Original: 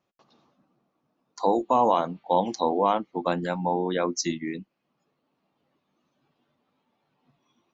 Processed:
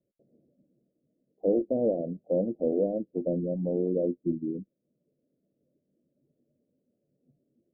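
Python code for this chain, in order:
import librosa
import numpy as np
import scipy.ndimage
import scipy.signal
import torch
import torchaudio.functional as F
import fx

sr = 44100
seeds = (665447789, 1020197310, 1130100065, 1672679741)

y = scipy.signal.sosfilt(scipy.signal.butter(12, 600.0, 'lowpass', fs=sr, output='sos'), x)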